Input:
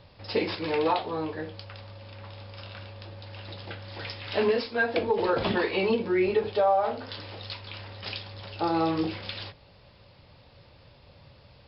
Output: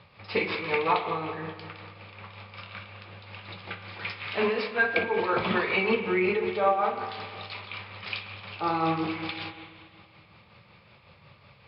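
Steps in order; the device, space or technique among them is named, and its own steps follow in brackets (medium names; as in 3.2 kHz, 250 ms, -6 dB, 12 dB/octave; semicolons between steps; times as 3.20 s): combo amplifier with spring reverb and tremolo (spring tank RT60 1.9 s, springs 44/49 ms, chirp 20 ms, DRR 5.5 dB; tremolo 5.4 Hz, depth 41%; cabinet simulation 97–4500 Hz, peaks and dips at 190 Hz +5 dB, 280 Hz -8 dB, 570 Hz -4 dB, 1.2 kHz +8 dB, 2.3 kHz +10 dB)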